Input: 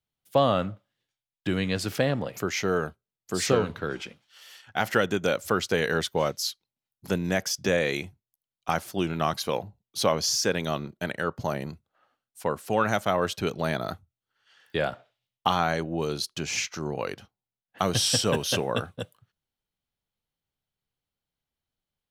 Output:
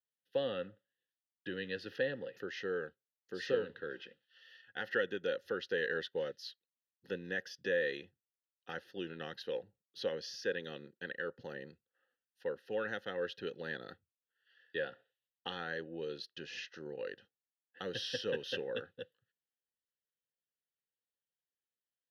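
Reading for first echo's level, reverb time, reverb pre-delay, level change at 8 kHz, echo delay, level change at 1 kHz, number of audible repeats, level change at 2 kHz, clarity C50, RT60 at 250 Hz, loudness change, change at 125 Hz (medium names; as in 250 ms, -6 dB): no echo, no reverb, no reverb, -27.0 dB, no echo, -21.0 dB, no echo, -8.5 dB, no reverb, no reverb, -12.5 dB, -21.0 dB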